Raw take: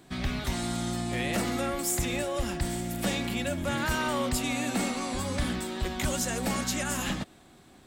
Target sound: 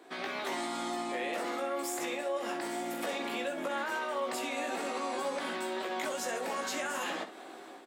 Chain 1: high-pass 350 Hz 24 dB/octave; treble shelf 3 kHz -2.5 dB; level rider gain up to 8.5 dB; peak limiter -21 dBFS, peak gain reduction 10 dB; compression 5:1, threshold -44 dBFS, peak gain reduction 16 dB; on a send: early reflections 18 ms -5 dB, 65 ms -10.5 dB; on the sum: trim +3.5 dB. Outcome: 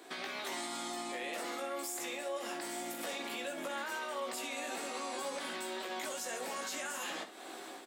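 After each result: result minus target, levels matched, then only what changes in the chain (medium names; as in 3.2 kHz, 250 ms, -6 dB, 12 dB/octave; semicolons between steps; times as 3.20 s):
8 kHz band +4.5 dB; compression: peak gain reduction +4.5 dB
change: treble shelf 3 kHz -12.5 dB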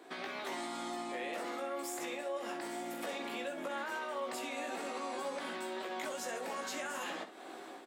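compression: peak gain reduction +5 dB
change: compression 5:1, threshold -38 dBFS, peak gain reduction 11.5 dB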